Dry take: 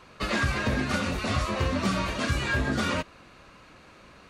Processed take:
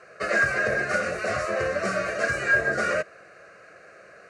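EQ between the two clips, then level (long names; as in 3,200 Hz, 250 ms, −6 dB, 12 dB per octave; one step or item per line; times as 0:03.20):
loudspeaker in its box 190–9,600 Hz, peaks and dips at 230 Hz +7 dB, 460 Hz +4 dB, 660 Hz +7 dB, 1,600 Hz +6 dB, 3,500 Hz +5 dB
phaser with its sweep stopped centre 930 Hz, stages 6
+3.0 dB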